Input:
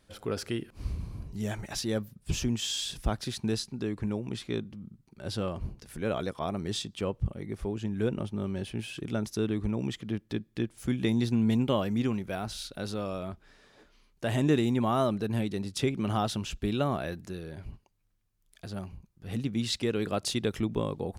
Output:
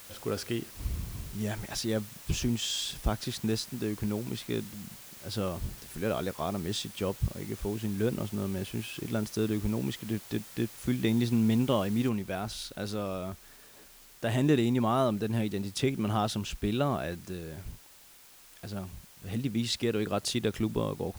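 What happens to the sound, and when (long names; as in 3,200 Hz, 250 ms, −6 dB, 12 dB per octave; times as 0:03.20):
0:04.65–0:05.32: volume swells 164 ms
0:12.09: noise floor change −49 dB −55 dB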